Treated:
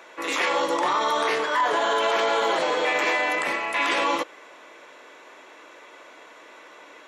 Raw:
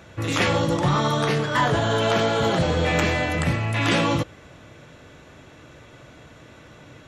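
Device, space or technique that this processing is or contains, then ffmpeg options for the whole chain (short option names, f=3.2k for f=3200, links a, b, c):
laptop speaker: -af "highpass=f=350:w=0.5412,highpass=f=350:w=1.3066,equalizer=f=1k:t=o:w=0.37:g=8.5,equalizer=f=2.1k:t=o:w=0.59:g=5,alimiter=limit=-14.5dB:level=0:latency=1:release=15"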